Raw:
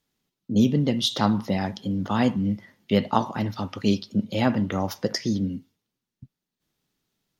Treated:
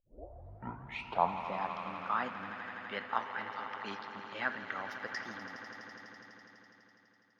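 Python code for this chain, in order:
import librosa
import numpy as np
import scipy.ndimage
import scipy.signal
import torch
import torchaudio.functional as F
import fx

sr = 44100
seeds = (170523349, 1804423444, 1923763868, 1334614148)

y = fx.tape_start_head(x, sr, length_s=1.47)
y = fx.echo_swell(y, sr, ms=83, loudest=5, wet_db=-13.0)
y = fx.filter_sweep_bandpass(y, sr, from_hz=570.0, to_hz=1600.0, start_s=0.07, end_s=2.68, q=4.0)
y = F.gain(torch.from_numpy(y), 2.0).numpy()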